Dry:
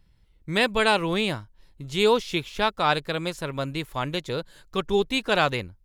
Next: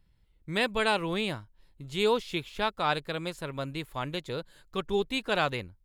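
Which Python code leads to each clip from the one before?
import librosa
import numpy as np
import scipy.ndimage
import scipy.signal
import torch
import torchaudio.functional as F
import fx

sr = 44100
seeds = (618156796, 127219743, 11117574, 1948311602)

y = fx.peak_eq(x, sr, hz=5800.0, db=-5.5, octaves=0.31)
y = y * 10.0 ** (-5.5 / 20.0)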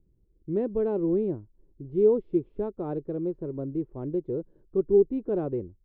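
y = fx.lowpass_res(x, sr, hz=370.0, q=3.7)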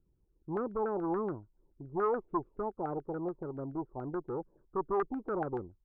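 y = fx.tube_stage(x, sr, drive_db=24.0, bias=0.3)
y = fx.filter_lfo_lowpass(y, sr, shape='saw_down', hz=7.0, low_hz=740.0, high_hz=1500.0, q=7.1)
y = y * 10.0 ** (-6.0 / 20.0)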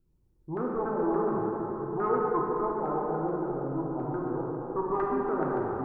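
y = fx.rev_plate(x, sr, seeds[0], rt60_s=4.5, hf_ratio=0.5, predelay_ms=0, drr_db=-4.5)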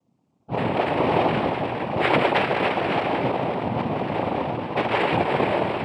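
y = fx.noise_vocoder(x, sr, seeds[1], bands=4)
y = y * 10.0 ** (7.0 / 20.0)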